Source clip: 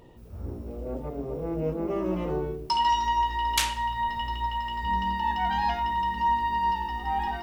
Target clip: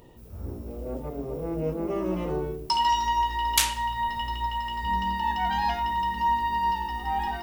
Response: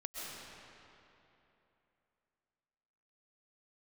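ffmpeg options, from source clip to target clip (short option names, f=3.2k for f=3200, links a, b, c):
-af "highshelf=f=6.8k:g=9.5"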